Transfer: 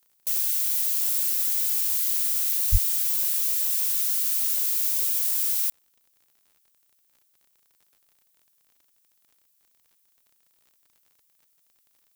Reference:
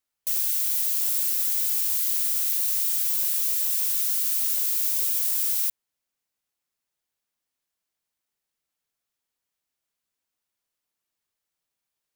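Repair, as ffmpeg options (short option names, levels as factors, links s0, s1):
-filter_complex "[0:a]adeclick=t=4,asplit=3[s0][s1][s2];[s0]afade=t=out:st=2.71:d=0.02[s3];[s1]highpass=f=140:w=0.5412,highpass=f=140:w=1.3066,afade=t=in:st=2.71:d=0.02,afade=t=out:st=2.83:d=0.02[s4];[s2]afade=t=in:st=2.83:d=0.02[s5];[s3][s4][s5]amix=inputs=3:normalize=0,agate=range=0.0891:threshold=0.00112"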